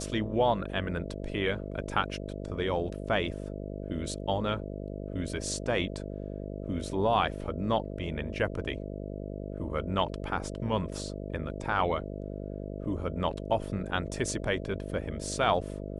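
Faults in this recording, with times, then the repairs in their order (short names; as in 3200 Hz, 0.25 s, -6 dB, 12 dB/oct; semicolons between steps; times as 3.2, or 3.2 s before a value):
buzz 50 Hz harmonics 13 -38 dBFS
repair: de-hum 50 Hz, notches 13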